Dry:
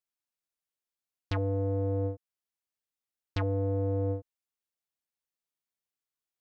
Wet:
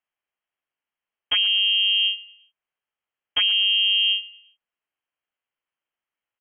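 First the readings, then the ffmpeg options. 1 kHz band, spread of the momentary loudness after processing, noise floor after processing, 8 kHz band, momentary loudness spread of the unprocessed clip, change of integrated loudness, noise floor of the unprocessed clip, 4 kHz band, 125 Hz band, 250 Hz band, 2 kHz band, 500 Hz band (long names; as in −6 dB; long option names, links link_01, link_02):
−1.5 dB, 8 LU, below −85 dBFS, can't be measured, 8 LU, +13.5 dB, below −85 dBFS, +38.0 dB, below −30 dB, below −20 dB, +24.5 dB, below −20 dB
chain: -af "lowpass=frequency=2800:width_type=q:width=0.5098,lowpass=frequency=2800:width_type=q:width=0.6013,lowpass=frequency=2800:width_type=q:width=0.9,lowpass=frequency=2800:width_type=q:width=2.563,afreqshift=-3300,aecho=1:1:116|232|348:0.126|0.0478|0.0182,volume=9dB"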